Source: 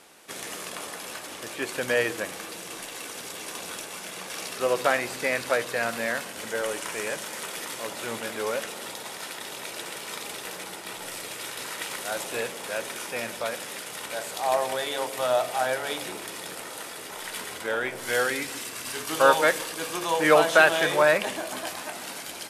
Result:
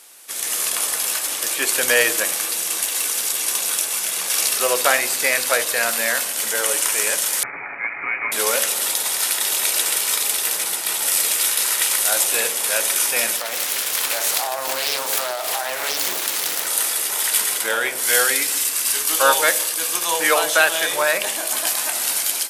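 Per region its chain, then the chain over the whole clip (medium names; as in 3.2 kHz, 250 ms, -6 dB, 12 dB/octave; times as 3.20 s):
7.43–8.32 s: high-pass 190 Hz + frequency inversion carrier 2.7 kHz + comb 7.1 ms, depth 34%
13.37–16.67 s: compression 10:1, threshold -30 dBFS + peaking EQ 8.5 kHz -6.5 dB 0.38 oct + loudspeaker Doppler distortion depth 0.79 ms
whole clip: RIAA curve recording; de-hum 50.78 Hz, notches 17; level rider; trim -1 dB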